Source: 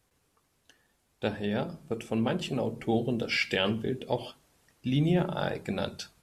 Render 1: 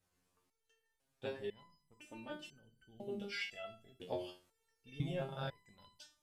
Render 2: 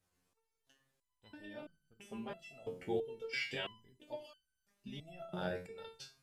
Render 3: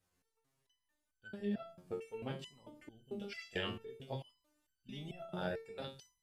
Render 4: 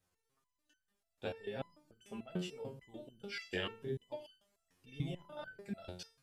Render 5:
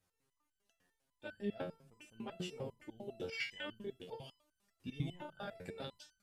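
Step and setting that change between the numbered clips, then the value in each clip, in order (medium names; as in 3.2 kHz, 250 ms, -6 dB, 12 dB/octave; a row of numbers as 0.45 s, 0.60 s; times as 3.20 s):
resonator arpeggio, rate: 2 Hz, 3 Hz, 4.5 Hz, 6.8 Hz, 10 Hz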